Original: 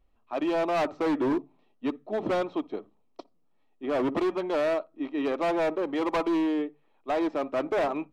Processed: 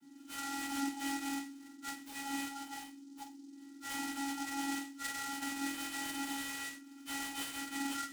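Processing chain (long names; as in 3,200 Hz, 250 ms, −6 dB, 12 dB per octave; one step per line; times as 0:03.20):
frequency axis turned over on the octave scale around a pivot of 1,900 Hz
0:05.60–0:07.51: Butterworth low-pass 4,300 Hz
treble cut that deepens with the level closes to 1,400 Hz, closed at −32 dBFS
harmonic and percussive parts rebalanced percussive −14 dB
downward compressor 4 to 1, threshold −55 dBFS, peak gain reduction 12.5 dB
brickwall limiter −53 dBFS, peak gain reduction 8.5 dB
channel vocoder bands 16, square 277 Hz
convolution reverb RT60 0.40 s, pre-delay 3 ms, DRR −9 dB
short delay modulated by noise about 5,500 Hz, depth 0.062 ms
level +14.5 dB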